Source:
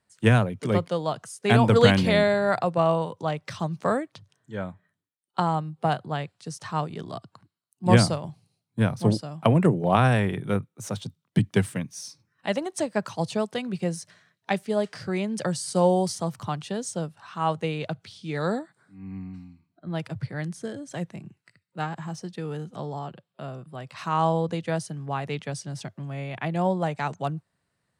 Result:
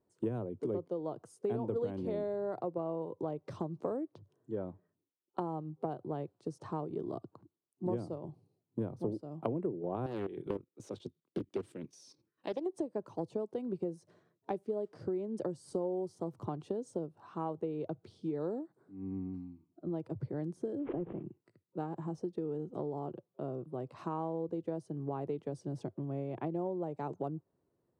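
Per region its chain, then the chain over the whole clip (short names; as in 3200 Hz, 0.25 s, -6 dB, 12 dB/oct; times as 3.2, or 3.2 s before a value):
10.06–12.66 weighting filter D + level quantiser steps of 13 dB + Doppler distortion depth 0.6 ms
20.79–21.23 delta modulation 16 kbps, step -46 dBFS + backwards sustainer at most 61 dB/s
whole clip: EQ curve 200 Hz 0 dB, 350 Hz +14 dB, 670 Hz +1 dB, 970 Hz -1 dB, 1800 Hz -15 dB; compressor 6:1, threshold -29 dBFS; gain -4.5 dB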